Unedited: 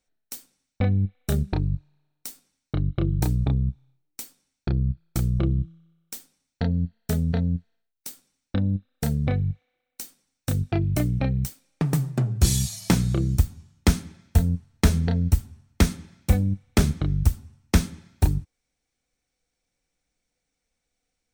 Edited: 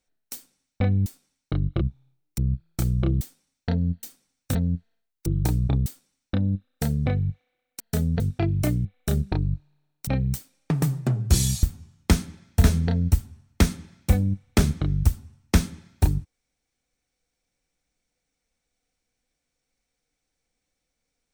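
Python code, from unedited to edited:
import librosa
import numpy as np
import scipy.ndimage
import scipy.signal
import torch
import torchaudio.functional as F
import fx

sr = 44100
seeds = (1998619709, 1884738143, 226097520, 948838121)

y = fx.edit(x, sr, fx.move(start_s=1.06, length_s=1.22, to_s=11.18),
    fx.move(start_s=3.03, length_s=0.6, to_s=8.07),
    fx.cut(start_s=4.2, length_s=0.55),
    fx.cut(start_s=5.58, length_s=0.56),
    fx.swap(start_s=6.96, length_s=0.4, other_s=10.01, other_length_s=0.52),
    fx.cut(start_s=12.74, length_s=0.66),
    fx.cut(start_s=14.41, length_s=0.43), tone=tone)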